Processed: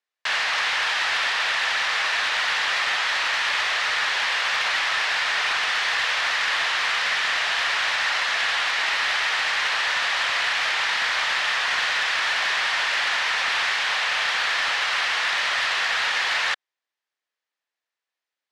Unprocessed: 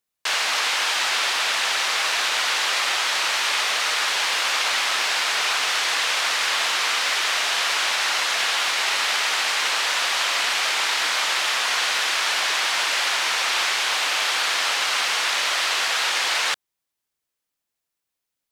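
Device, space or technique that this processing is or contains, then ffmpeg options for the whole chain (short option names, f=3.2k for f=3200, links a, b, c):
intercom: -af "highpass=490,lowpass=4.3k,equalizer=f=1.8k:t=o:w=0.28:g=6,asoftclip=type=tanh:threshold=-14.5dB"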